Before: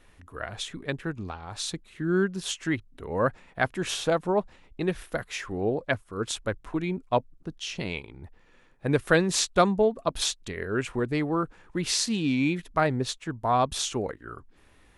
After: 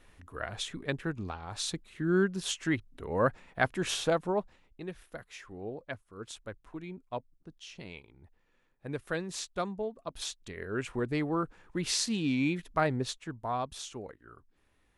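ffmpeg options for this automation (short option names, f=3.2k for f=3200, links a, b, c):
-af "volume=7dB,afade=t=out:st=3.98:d=0.82:silence=0.281838,afade=t=in:st=10.05:d=1.05:silence=0.354813,afade=t=out:st=12.97:d=0.75:silence=0.375837"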